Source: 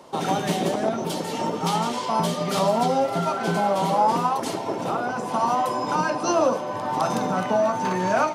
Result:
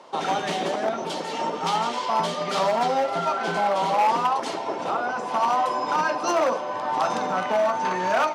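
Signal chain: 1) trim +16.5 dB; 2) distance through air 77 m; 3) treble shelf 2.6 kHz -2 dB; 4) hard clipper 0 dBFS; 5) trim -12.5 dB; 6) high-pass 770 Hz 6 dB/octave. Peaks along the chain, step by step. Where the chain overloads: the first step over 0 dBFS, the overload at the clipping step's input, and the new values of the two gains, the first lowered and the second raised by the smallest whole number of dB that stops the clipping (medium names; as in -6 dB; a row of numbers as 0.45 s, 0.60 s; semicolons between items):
+7.0 dBFS, +6.5 dBFS, +6.5 dBFS, 0.0 dBFS, -12.5 dBFS, -10.0 dBFS; step 1, 6.5 dB; step 1 +9.5 dB, step 5 -5.5 dB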